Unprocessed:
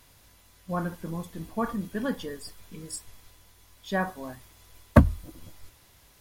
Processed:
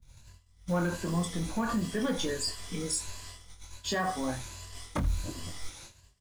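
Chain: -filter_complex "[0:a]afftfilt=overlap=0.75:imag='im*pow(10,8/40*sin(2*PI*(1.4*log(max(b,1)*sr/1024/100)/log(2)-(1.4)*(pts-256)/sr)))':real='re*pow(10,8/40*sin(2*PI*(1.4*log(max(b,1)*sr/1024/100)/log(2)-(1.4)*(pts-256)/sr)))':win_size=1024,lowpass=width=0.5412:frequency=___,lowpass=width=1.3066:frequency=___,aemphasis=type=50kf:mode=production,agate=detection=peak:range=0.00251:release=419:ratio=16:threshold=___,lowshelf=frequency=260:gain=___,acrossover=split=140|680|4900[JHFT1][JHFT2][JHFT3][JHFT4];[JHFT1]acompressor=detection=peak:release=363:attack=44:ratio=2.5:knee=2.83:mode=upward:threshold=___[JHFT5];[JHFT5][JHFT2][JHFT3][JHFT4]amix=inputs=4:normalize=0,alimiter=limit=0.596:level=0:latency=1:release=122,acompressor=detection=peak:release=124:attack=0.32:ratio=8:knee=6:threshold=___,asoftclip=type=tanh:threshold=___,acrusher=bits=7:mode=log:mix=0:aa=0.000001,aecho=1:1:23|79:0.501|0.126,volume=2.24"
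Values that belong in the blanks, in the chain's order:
8000, 8000, 0.00282, -2.5, 0.00316, 0.0316, 0.0398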